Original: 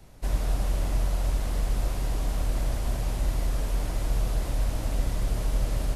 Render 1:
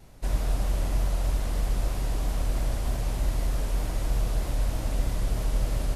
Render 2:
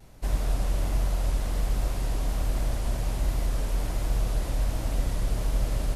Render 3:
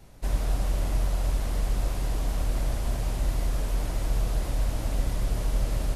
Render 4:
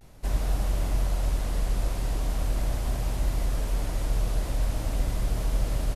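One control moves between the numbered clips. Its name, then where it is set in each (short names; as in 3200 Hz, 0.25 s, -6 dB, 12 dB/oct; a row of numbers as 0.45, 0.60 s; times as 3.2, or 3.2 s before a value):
vibrato, rate: 3.2, 1.3, 7.9, 0.42 Hz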